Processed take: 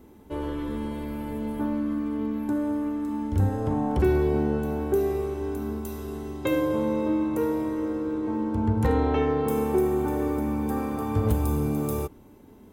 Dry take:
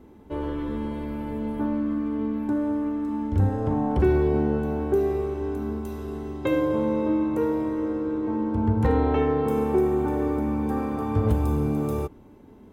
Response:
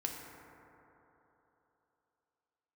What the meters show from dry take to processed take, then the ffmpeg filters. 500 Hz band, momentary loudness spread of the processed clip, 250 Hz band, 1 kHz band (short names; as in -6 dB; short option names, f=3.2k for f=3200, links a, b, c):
-1.5 dB, 9 LU, -1.5 dB, -1.0 dB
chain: -af "crystalizer=i=2:c=0,volume=-1.5dB"